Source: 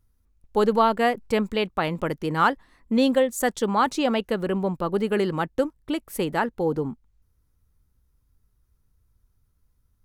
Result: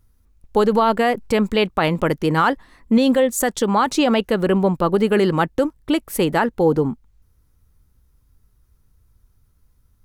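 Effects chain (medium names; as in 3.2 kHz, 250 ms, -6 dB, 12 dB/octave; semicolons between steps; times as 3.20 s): 3.40–3.91 s: compression, threshold -21 dBFS, peak gain reduction 6 dB; peak limiter -15 dBFS, peak gain reduction 7.5 dB; trim +8 dB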